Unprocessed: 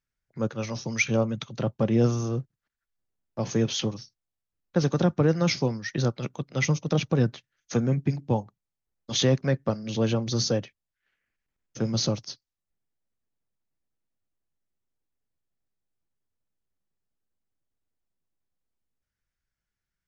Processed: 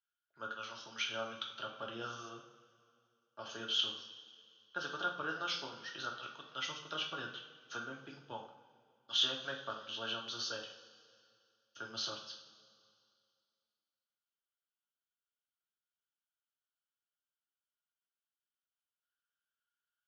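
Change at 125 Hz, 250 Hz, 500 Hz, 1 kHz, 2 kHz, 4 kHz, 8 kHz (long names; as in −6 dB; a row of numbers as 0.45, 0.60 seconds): −32.5 dB, −25.5 dB, −19.5 dB, −6.0 dB, −7.5 dB, −2.5 dB, can't be measured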